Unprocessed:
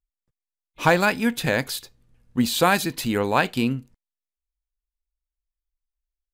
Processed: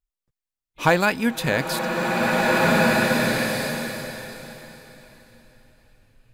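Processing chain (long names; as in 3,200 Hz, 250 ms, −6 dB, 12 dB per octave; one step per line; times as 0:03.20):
frozen spectrum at 0:02.17, 2.60 s
slow-attack reverb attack 1,870 ms, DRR −4 dB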